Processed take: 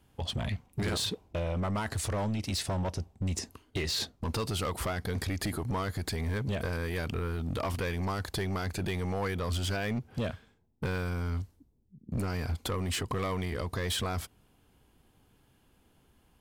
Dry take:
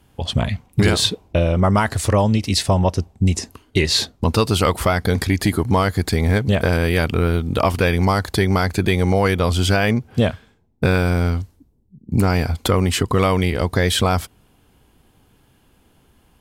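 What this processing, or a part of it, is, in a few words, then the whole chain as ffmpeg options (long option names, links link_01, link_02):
limiter into clipper: -af "alimiter=limit=-12.5dB:level=0:latency=1:release=22,asoftclip=type=hard:threshold=-18dB,volume=-9dB"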